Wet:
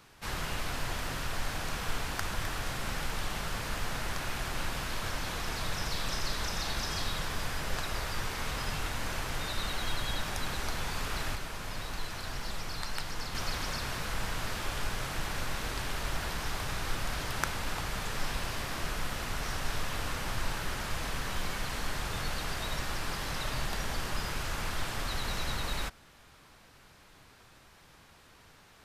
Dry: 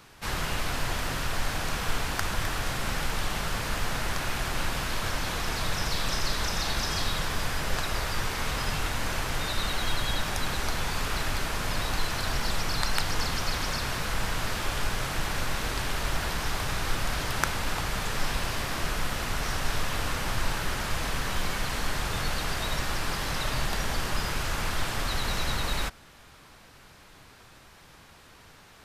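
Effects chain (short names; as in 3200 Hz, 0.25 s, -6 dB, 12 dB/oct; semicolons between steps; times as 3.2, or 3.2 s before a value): 11.35–13.35 flange 1.7 Hz, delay 4.5 ms, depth 7.4 ms, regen -61%; gain -5 dB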